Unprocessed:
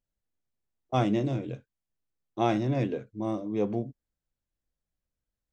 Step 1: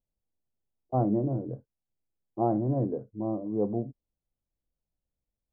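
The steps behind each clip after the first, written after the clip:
inverse Chebyshev low-pass filter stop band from 3,000 Hz, stop band 60 dB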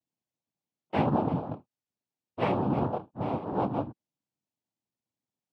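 cochlear-implant simulation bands 4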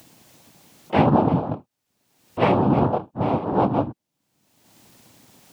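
upward compression, threshold −37 dBFS
level +9 dB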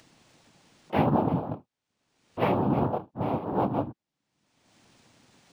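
linearly interpolated sample-rate reduction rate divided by 3×
level −6.5 dB

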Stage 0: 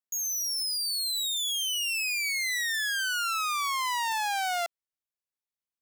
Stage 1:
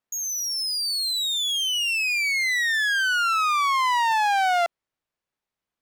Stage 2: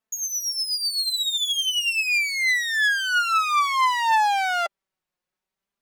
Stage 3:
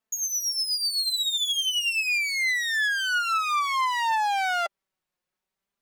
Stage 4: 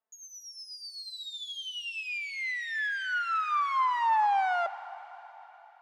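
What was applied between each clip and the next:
low-pass filter 1,800 Hz 6 dB per octave; in parallel at +2 dB: brickwall limiter −34 dBFS, peak gain reduction 8.5 dB; on the sum: level +6.5 dB
flanger 0.48 Hz, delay 4.5 ms, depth 1.1 ms, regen +17%; level +4 dB
downward compressor, threshold −22 dBFS, peak gain reduction 6 dB
resonant band-pass 780 Hz, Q 1.1; dense smooth reverb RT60 4.1 s, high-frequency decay 0.95×, DRR 13 dB

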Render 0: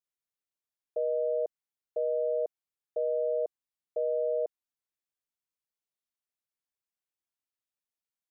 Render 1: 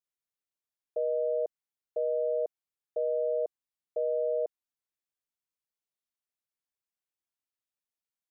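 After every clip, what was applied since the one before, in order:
no processing that can be heard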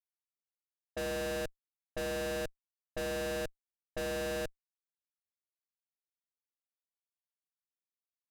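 comparator with hysteresis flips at −35 dBFS
low-pass that shuts in the quiet parts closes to 420 Hz, open at −37 dBFS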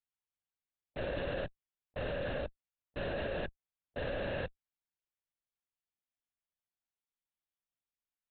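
linear-prediction vocoder at 8 kHz whisper
level −1 dB

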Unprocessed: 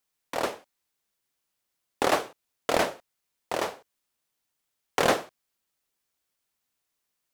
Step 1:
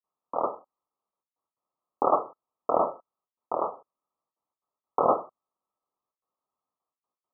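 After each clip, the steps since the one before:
spectral tilt +4 dB per octave
noise gate with hold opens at −56 dBFS
Chebyshev low-pass filter 1,300 Hz, order 10
level +4.5 dB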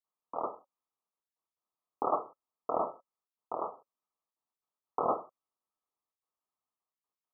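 notch filter 550 Hz, Q 12
level −7 dB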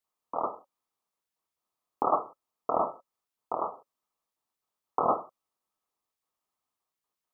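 dynamic equaliser 440 Hz, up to −4 dB, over −42 dBFS, Q 1.4
level +5.5 dB

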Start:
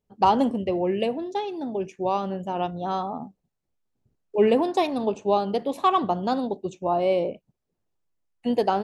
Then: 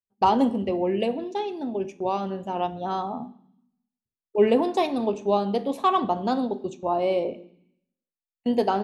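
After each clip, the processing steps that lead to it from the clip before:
noise gate −37 dBFS, range −25 dB
on a send at −9.5 dB: convolution reverb RT60 0.65 s, pre-delay 3 ms
on the sum: level −1 dB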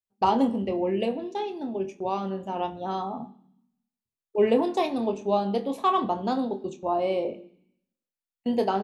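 double-tracking delay 26 ms −9 dB
level −2.5 dB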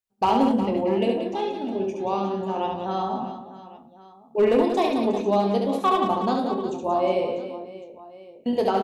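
hard clipping −15.5 dBFS, distortion −23 dB
reverse bouncing-ball delay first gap 70 ms, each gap 1.6×, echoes 5
level +1.5 dB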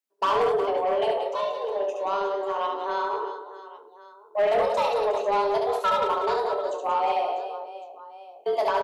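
frequency shifter +200 Hz
soft clipping −16.5 dBFS, distortion −15 dB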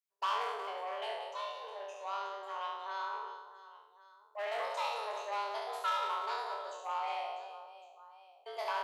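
peak hold with a decay on every bin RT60 0.75 s
high-pass filter 1,000 Hz 12 dB per octave
level −9 dB

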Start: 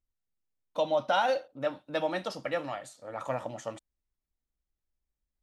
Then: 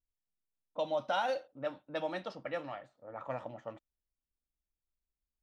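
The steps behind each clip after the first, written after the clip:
low-pass that shuts in the quiet parts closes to 740 Hz, open at −24.5 dBFS
level −6 dB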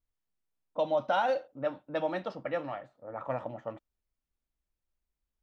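high-shelf EQ 3,000 Hz −10.5 dB
level +5.5 dB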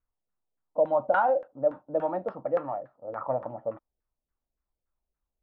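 auto-filter low-pass saw down 3.5 Hz 500–1,600 Hz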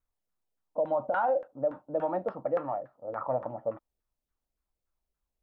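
brickwall limiter −19.5 dBFS, peak gain reduction 7.5 dB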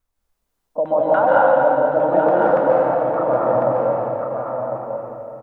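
single-tap delay 1,050 ms −6.5 dB
dense smooth reverb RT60 2.8 s, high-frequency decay 0.95×, pre-delay 120 ms, DRR −6 dB
level +7.5 dB

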